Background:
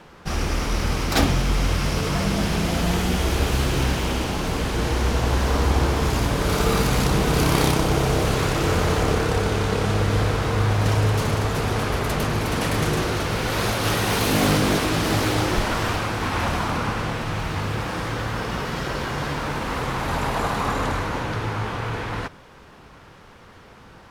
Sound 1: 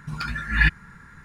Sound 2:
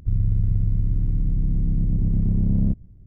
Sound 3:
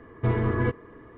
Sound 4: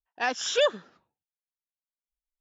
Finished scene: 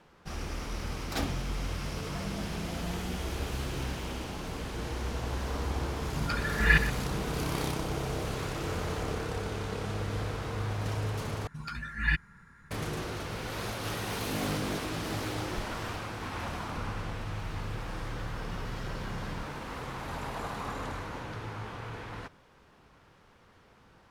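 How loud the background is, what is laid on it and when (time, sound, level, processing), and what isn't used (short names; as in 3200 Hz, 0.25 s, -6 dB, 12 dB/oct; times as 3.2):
background -13 dB
6.09 add 1 -3.5 dB + echo 0.123 s -12.5 dB
11.47 replace with 1 -9 dB
16.7 add 2 -14.5 dB + compressor, threshold -21 dBFS
not used: 3, 4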